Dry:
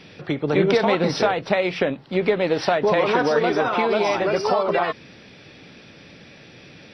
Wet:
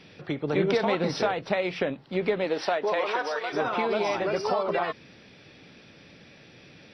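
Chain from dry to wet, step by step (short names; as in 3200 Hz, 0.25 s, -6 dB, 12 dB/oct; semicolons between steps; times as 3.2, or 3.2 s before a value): 2.44–3.52 HPF 210 Hz -> 880 Hz 12 dB/oct; gain -6 dB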